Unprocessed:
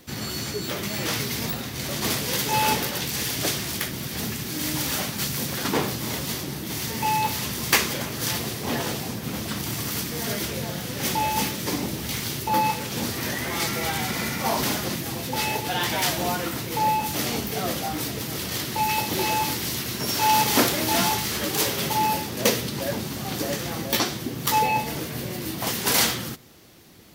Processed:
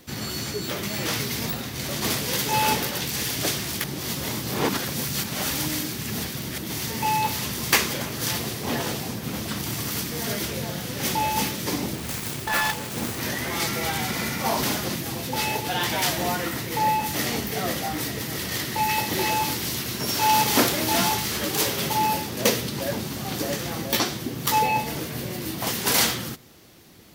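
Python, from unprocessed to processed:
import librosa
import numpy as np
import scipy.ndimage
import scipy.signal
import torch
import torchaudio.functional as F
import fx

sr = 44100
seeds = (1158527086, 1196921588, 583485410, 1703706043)

y = fx.self_delay(x, sr, depth_ms=0.57, at=(11.93, 13.2))
y = fx.peak_eq(y, sr, hz=1900.0, db=7.0, octaves=0.2, at=(16.14, 19.31))
y = fx.edit(y, sr, fx.reverse_span(start_s=3.84, length_s=2.74), tone=tone)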